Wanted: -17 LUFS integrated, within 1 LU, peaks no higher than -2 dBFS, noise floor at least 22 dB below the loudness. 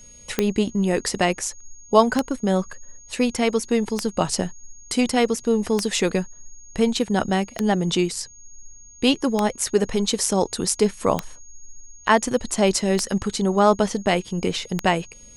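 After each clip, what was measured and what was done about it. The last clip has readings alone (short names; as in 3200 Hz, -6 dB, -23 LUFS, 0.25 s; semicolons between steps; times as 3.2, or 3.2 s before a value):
clicks 9; steady tone 6600 Hz; tone level -45 dBFS; loudness -22.0 LUFS; peak -3.0 dBFS; loudness target -17.0 LUFS
-> de-click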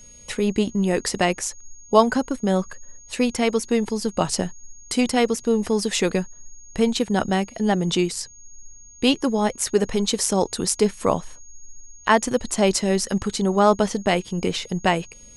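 clicks 0; steady tone 6600 Hz; tone level -45 dBFS
-> notch 6600 Hz, Q 30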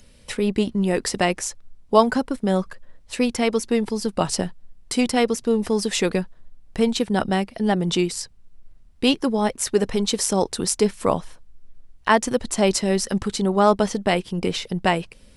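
steady tone none; loudness -22.0 LUFS; peak -3.0 dBFS; loudness target -17.0 LUFS
-> gain +5 dB; limiter -2 dBFS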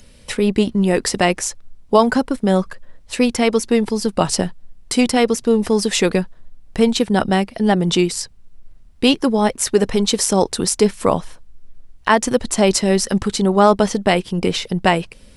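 loudness -17.5 LUFS; peak -2.0 dBFS; noise floor -45 dBFS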